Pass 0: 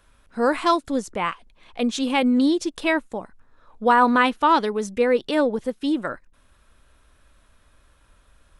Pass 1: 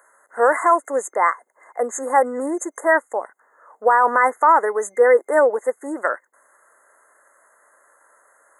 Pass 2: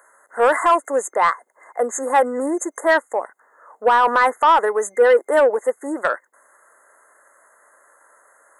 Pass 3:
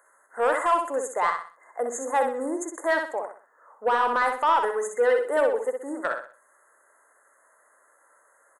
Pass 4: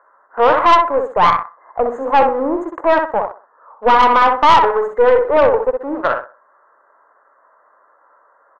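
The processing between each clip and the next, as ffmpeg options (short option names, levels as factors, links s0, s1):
-af "afftfilt=real='re*(1-between(b*sr/4096,2100,6300))':imag='im*(1-between(b*sr/4096,2100,6300))':win_size=4096:overlap=0.75,highpass=f=470:w=0.5412,highpass=f=470:w=1.3066,alimiter=limit=0.2:level=0:latency=1:release=42,volume=2.66"
-af "acontrast=73,volume=0.596"
-af "aecho=1:1:63|126|189|252:0.531|0.181|0.0614|0.0209,volume=0.398"
-filter_complex "[0:a]asplit=2[s0][s1];[s1]aeval=exprs='val(0)*gte(abs(val(0)),0.0178)':c=same,volume=0.562[s2];[s0][s2]amix=inputs=2:normalize=0,lowpass=f=1100:t=q:w=2,aeval=exprs='(tanh(3.98*val(0)+0.4)-tanh(0.4))/3.98':c=same,volume=2.24"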